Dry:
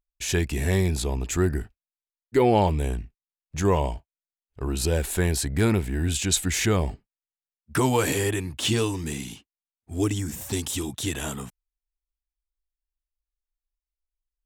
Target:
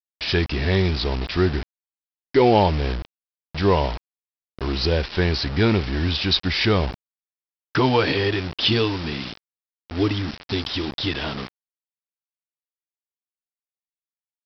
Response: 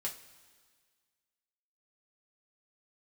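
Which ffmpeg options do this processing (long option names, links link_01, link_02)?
-af "bass=frequency=250:gain=-2,treble=frequency=4000:gain=9,aresample=11025,acrusher=bits=5:mix=0:aa=0.000001,aresample=44100,volume=4dB"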